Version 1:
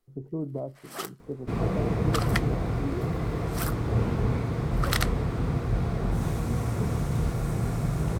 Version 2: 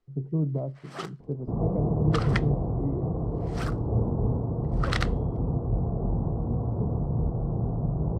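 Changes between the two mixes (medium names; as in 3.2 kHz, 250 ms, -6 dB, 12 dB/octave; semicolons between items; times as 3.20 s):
speech: add peaking EQ 150 Hz +12 dB 0.47 oct; second sound: add steep low-pass 930 Hz 36 dB/octave; master: add distance through air 110 m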